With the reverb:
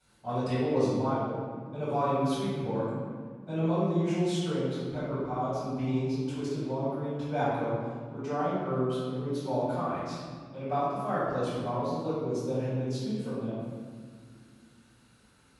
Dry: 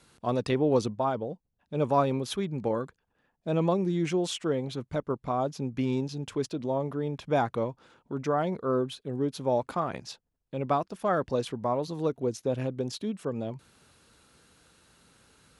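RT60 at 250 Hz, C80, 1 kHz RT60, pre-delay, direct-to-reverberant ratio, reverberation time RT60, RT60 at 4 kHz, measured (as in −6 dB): 3.1 s, 0.0 dB, 1.9 s, 3 ms, −13.5 dB, 2.0 s, 1.1 s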